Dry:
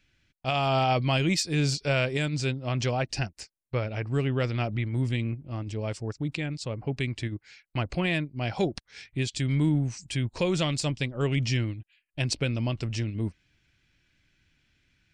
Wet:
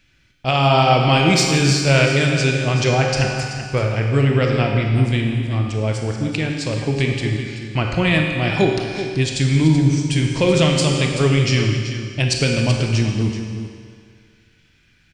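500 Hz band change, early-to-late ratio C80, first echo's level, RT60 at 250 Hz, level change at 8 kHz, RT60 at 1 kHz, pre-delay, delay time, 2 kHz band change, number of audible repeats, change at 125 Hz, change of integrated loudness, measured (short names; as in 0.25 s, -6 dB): +11.0 dB, 3.0 dB, -11.0 dB, 1.9 s, +11.0 dB, 2.0 s, 24 ms, 0.381 s, +11.5 dB, 1, +11.0 dB, +11.0 dB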